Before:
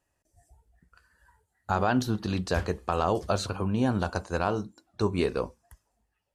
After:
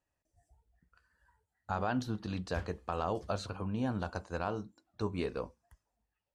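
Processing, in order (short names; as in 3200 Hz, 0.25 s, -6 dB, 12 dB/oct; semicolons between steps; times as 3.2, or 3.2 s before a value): high shelf 9300 Hz -12 dB; notch 380 Hz, Q 12; gain -8 dB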